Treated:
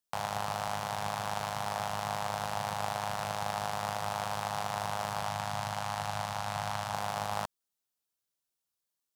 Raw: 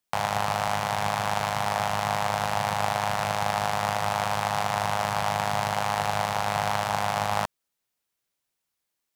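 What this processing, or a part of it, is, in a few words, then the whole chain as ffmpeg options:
exciter from parts: -filter_complex "[0:a]asettb=1/sr,asplit=3[a][b][c];[a]atrim=end=5.274[d];[b]atrim=start=5.27:end=6.94,asetpts=PTS-STARTPTS,afade=t=in:d=0.004:c=qsin,afade=t=out:st=1.666:d=0.004:c=qsin,equalizer=f=100:t=o:w=0.67:g=3,equalizer=f=400:t=o:w=0.67:g=-10,equalizer=f=16k:t=o:w=0.67:g=-4[e];[c]atrim=start=6.936[f];[d][e]acrossfade=d=0.004:c1=hsin:c2=qsin[g];[g][f]acrossfade=d=0.004:c1=qsin:c2=hsin,asplit=2[h][i];[i]highpass=f=2k:w=0.5412,highpass=f=2k:w=1.3066,asoftclip=type=tanh:threshold=-27.5dB,volume=-5dB[j];[h][j]amix=inputs=2:normalize=0,volume=-8dB"

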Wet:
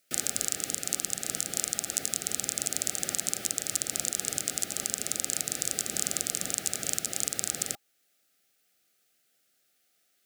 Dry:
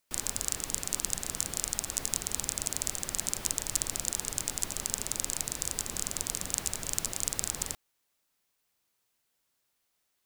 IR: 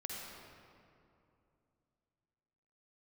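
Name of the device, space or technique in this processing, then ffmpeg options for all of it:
PA system with an anti-feedback notch: -af "highpass=150,asuperstop=centerf=990:order=20:qfactor=2.7,alimiter=limit=-11.5dB:level=0:latency=1:release=425,volume=6.5dB"

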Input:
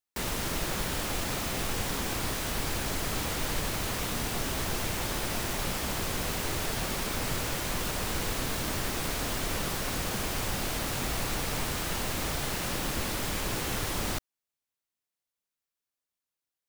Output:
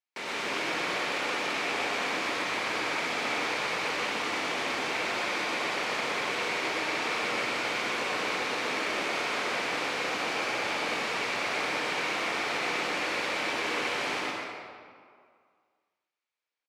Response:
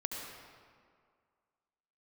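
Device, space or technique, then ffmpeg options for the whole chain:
station announcement: -filter_complex "[0:a]highpass=390,lowpass=4.4k,equalizer=f=2.3k:t=o:w=0.26:g=8,aecho=1:1:122.4|253.6:0.891|0.282[a];[1:a]atrim=start_sample=2205[b];[a][b]afir=irnorm=-1:irlink=0"

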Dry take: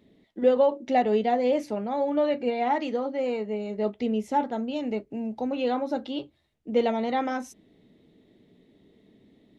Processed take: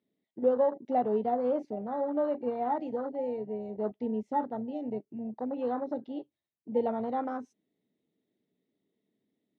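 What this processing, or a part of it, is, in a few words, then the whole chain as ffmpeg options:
over-cleaned archive recording: -af "highpass=140,lowpass=6.2k,afwtdn=0.0355,volume=-5dB"

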